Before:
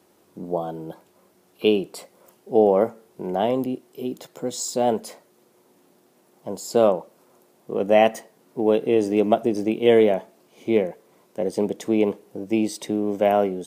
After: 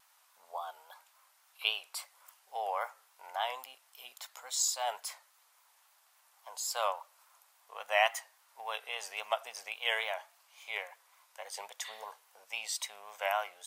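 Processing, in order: inverse Chebyshev high-pass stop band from 360 Hz, stop band 50 dB; vibrato 3.6 Hz 63 cents; spectral repair 11.87–12.2, 1700–4600 Hz both; gain -1 dB

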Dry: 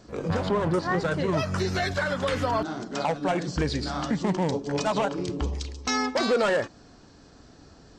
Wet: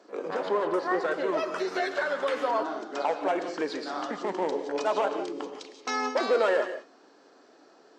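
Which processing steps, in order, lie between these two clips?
HPF 330 Hz 24 dB/oct; high shelf 3200 Hz -11 dB; non-linear reverb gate 0.2 s rising, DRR 8.5 dB

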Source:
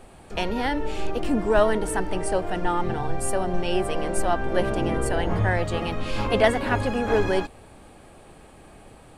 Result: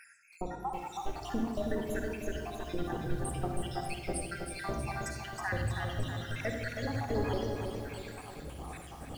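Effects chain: random spectral dropouts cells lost 81%; dynamic EQ 4900 Hz, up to +5 dB, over -60 dBFS, Q 2.2; reverse; upward compressor, threshold -38 dBFS; reverse; limiter -18.5 dBFS, peak gain reduction 11 dB; compressor 1.5:1, threshold -43 dBFS, peak gain reduction 7.5 dB; on a send at -3.5 dB: reverb RT60 1.1 s, pre-delay 46 ms; on the sum: lo-fi delay 0.32 s, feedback 55%, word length 9-bit, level -5.5 dB

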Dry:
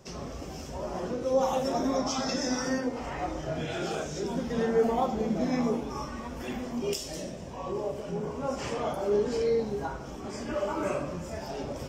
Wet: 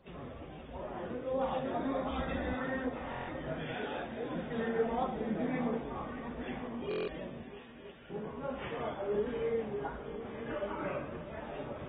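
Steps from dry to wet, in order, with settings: 2.1–2.53 octaver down 2 oct, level +2 dB; dynamic EQ 1800 Hz, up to +5 dB, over -54 dBFS, Q 2.5; flange 1.4 Hz, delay 3.6 ms, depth 6.5 ms, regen -36%; 3.75–4.35 frequency shift +71 Hz; 7.43–8.1 brick-wall FIR high-pass 1300 Hz; multi-head echo 0.322 s, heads second and third, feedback 41%, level -14 dB; stuck buffer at 3.1/6.89, samples 1024, times 7; gain -3.5 dB; AAC 16 kbps 32000 Hz

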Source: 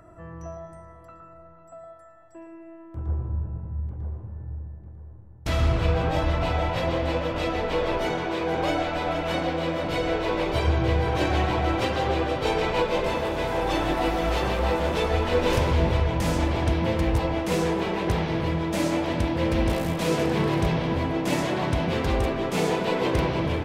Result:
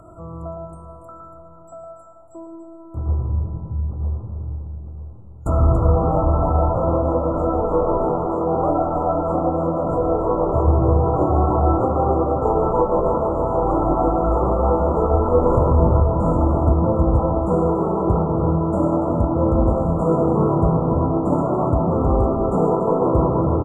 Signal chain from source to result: treble ducked by the level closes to 2600 Hz, closed at -22 dBFS; echo 0.284 s -11 dB; FFT band-reject 1400–6800 Hz; gain +6.5 dB

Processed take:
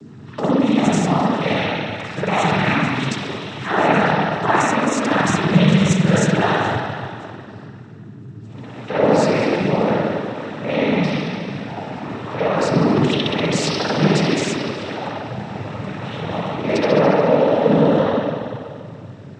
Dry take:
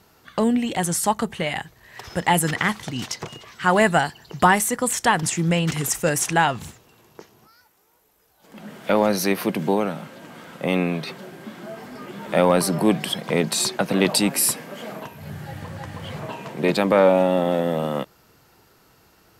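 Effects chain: limiter -13 dBFS, peak gain reduction 7.5 dB; spring tank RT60 2.2 s, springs 47 ms, chirp 25 ms, DRR -9.5 dB; hum 60 Hz, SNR 13 dB; noise vocoder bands 12; gain -2 dB

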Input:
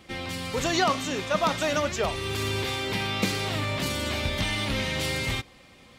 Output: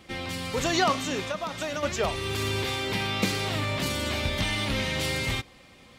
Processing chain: 1.27–1.83 compressor 12:1, threshold -28 dBFS, peak gain reduction 10 dB

